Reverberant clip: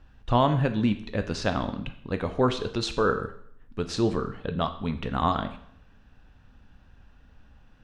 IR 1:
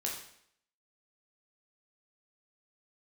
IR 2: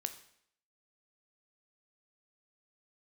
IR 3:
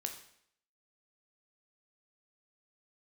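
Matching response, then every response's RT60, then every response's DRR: 2; 0.65 s, 0.65 s, 0.65 s; -2.0 dB, 8.5 dB, 4.5 dB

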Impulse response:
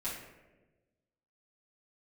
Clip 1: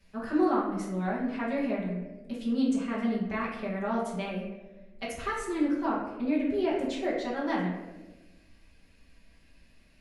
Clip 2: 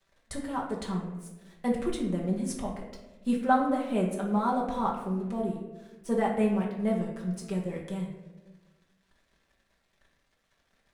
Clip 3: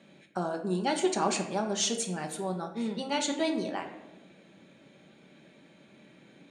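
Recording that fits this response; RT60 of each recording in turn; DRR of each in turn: 1; 1.2 s, 1.2 s, 1.2 s; -10.0 dB, -2.5 dB, 3.0 dB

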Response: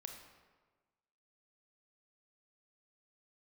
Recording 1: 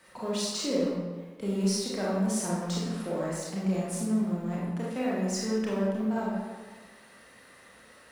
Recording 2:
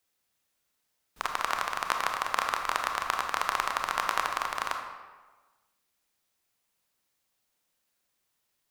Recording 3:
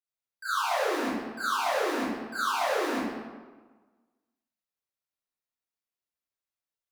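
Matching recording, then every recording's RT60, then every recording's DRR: 2; 1.4 s, 1.4 s, 1.4 s; -6.5 dB, 3.5 dB, -16.0 dB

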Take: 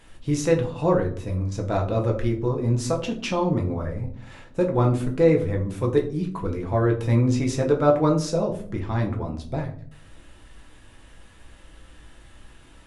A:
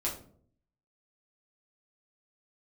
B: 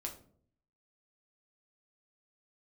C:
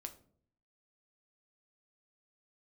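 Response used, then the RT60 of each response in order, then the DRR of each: B; 0.55 s, 0.55 s, 0.55 s; -5.0 dB, 0.5 dB, 5.5 dB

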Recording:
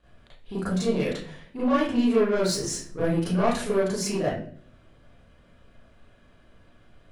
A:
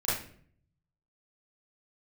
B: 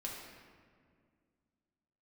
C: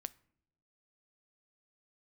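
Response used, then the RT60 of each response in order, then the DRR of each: A; 0.55 s, 2.0 s, no single decay rate; -10.5 dB, -3.0 dB, 15.5 dB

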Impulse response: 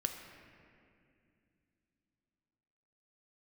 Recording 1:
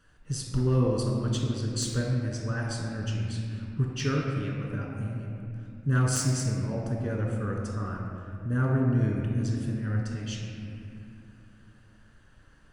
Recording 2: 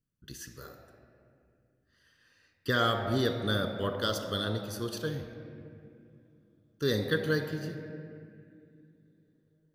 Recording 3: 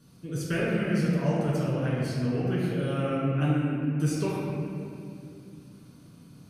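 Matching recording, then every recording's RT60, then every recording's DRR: 2; 2.4 s, 2.4 s, 2.4 s; -2.5 dB, 4.5 dB, -7.5 dB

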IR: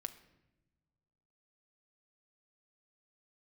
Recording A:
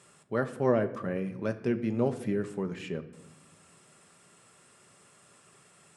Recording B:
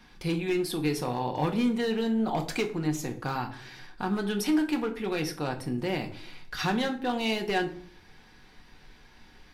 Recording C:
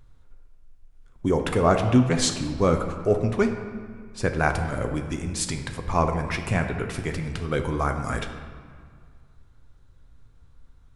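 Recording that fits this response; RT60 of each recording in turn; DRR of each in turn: A; no single decay rate, 0.50 s, 2.0 s; 8.0 dB, 3.0 dB, 5.0 dB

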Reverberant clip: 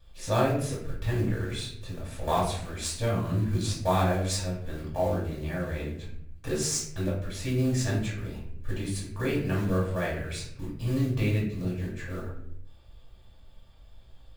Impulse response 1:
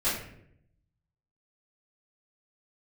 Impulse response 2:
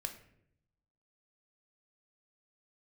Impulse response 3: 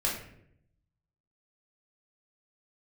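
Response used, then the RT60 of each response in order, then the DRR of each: 3; 0.70 s, 0.70 s, 0.70 s; -14.5 dB, 5.0 dB, -5.0 dB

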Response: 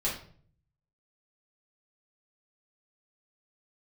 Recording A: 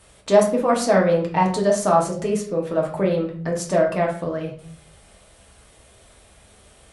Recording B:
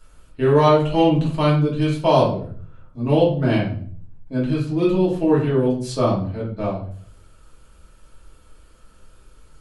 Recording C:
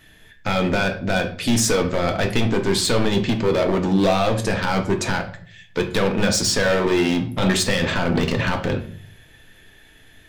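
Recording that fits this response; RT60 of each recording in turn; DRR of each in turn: B; 0.50 s, 0.50 s, 0.50 s; -1.5 dB, -7.0 dB, 3.5 dB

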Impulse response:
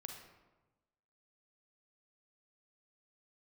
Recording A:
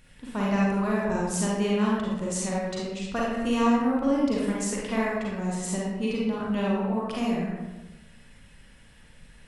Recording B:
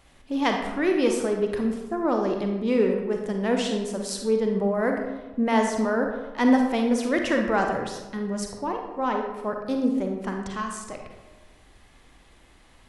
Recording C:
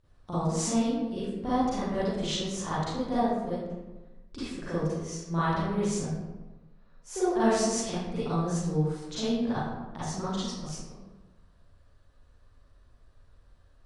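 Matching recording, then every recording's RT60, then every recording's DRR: B; 1.1 s, 1.1 s, 1.1 s; -5.5 dB, 2.5 dB, -12.0 dB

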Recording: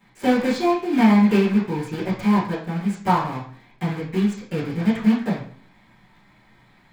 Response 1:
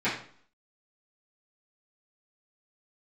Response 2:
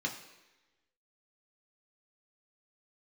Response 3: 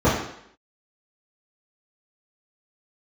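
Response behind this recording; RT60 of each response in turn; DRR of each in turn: 1; 0.50 s, 1.1 s, 0.70 s; -13.5 dB, 0.0 dB, -12.5 dB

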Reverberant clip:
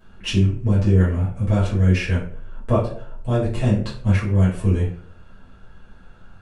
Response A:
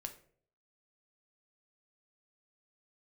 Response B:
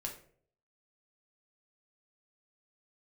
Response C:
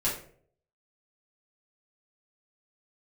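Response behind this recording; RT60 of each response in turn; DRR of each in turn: C; 0.55 s, 0.55 s, 0.55 s; 5.0 dB, -0.5 dB, -8.5 dB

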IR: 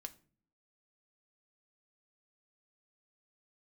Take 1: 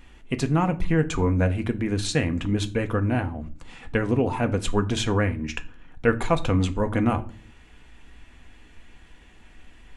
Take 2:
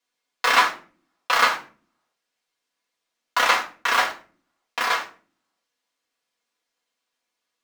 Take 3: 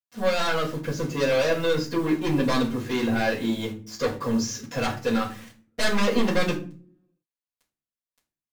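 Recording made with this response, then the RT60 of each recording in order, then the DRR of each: 1; 0.45 s, 0.40 s, 0.40 s; 6.5 dB, -3.0 dB, -8.5 dB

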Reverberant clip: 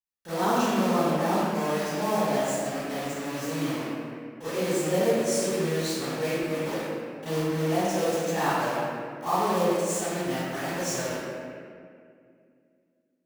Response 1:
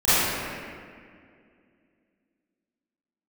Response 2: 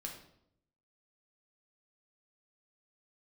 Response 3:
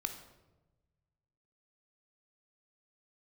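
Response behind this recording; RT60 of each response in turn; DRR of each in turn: 1; 2.2 s, 0.75 s, 1.1 s; -18.5 dB, 0.0 dB, 5.5 dB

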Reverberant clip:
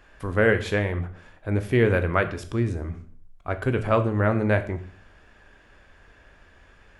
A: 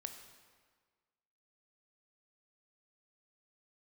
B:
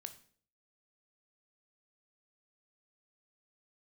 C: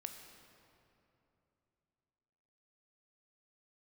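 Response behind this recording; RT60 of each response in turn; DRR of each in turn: B; 1.6 s, 0.50 s, 3.0 s; 6.0 dB, 8.5 dB, 5.0 dB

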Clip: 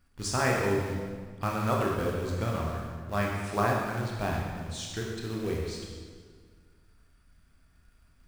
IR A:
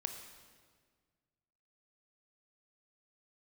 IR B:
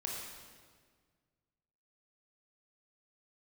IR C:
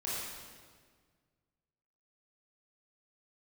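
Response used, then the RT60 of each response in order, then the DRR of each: B; 1.7 s, 1.7 s, 1.7 s; 5.5 dB, -2.5 dB, -8.5 dB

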